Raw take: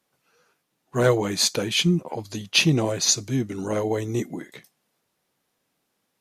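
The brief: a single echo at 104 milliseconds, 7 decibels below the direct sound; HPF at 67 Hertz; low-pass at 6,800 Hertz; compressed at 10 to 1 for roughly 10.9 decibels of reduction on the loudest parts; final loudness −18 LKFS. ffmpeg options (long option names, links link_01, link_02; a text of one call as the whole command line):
ffmpeg -i in.wav -af "highpass=67,lowpass=6800,acompressor=threshold=-25dB:ratio=10,aecho=1:1:104:0.447,volume=11dB" out.wav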